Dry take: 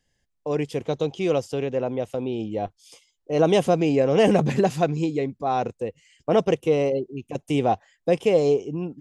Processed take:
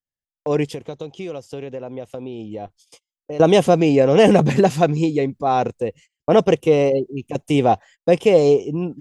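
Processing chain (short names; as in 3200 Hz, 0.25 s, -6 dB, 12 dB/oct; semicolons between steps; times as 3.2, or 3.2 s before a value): gate -47 dBFS, range -31 dB; 0.69–3.4 compressor 6:1, threshold -34 dBFS, peak gain reduction 15.5 dB; gain +5.5 dB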